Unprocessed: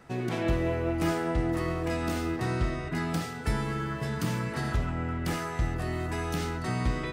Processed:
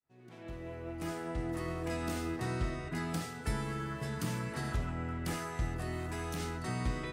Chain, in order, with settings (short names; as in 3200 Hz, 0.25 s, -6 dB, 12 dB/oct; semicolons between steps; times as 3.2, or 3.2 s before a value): opening faded in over 1.96 s; dynamic EQ 9600 Hz, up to +5 dB, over -60 dBFS, Q 0.85; 6–6.4 hard clip -27 dBFS, distortion -28 dB; gain -6 dB